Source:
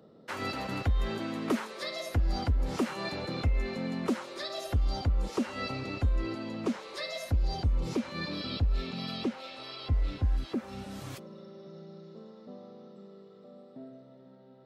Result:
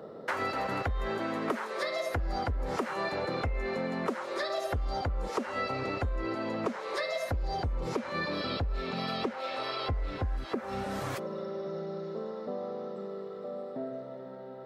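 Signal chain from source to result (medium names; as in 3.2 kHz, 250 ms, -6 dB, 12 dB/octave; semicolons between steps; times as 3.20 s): high-order bell 890 Hz +8.5 dB 2.7 oct; compression 4:1, threshold -37 dBFS, peak gain reduction 16 dB; trim +6 dB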